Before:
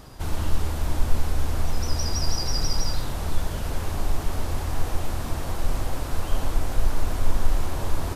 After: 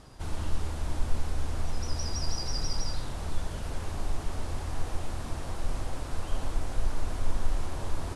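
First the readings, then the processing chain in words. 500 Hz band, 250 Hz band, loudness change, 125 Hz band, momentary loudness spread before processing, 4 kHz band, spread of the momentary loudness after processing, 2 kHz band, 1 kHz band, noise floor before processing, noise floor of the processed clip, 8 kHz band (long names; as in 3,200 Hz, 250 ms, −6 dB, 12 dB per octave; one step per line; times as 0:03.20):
−6.5 dB, −6.5 dB, −6.5 dB, −6.5 dB, 5 LU, −6.5 dB, 5 LU, −6.5 dB, −6.5 dB, −31 dBFS, −38 dBFS, −6.5 dB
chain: Butterworth low-pass 11,000 Hz 36 dB per octave
level −6.5 dB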